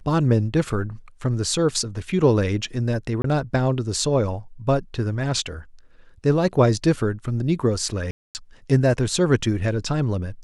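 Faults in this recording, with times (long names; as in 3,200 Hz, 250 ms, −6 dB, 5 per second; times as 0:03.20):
0:03.22–0:03.24: drop-out 23 ms
0:08.11–0:08.35: drop-out 239 ms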